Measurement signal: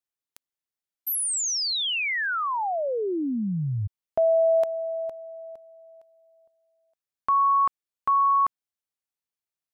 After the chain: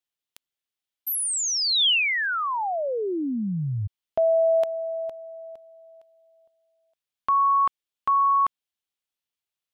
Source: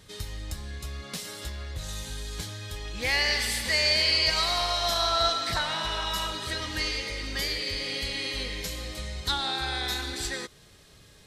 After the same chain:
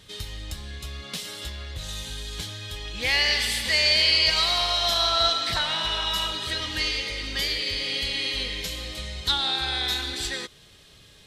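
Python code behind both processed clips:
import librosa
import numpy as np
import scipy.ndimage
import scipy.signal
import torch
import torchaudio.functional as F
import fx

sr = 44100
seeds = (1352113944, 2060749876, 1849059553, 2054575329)

y = fx.peak_eq(x, sr, hz=3200.0, db=7.5, octaves=0.84)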